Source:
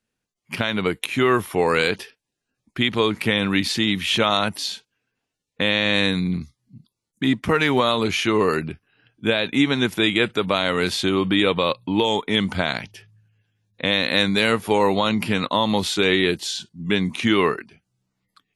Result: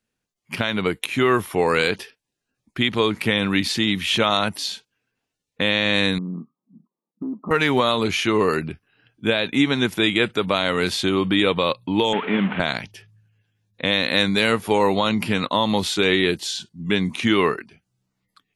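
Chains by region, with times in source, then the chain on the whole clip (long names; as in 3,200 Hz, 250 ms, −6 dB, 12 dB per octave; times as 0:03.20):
0:06.18–0:07.51: linear-phase brick-wall band-pass 160–1,300 Hz + downward compressor, threshold −25 dBFS
0:12.13–0:12.60: linear delta modulator 16 kbit/s, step −24.5 dBFS + high-pass with resonance 180 Hz, resonance Q 2 + spectral tilt +1.5 dB per octave
whole clip: no processing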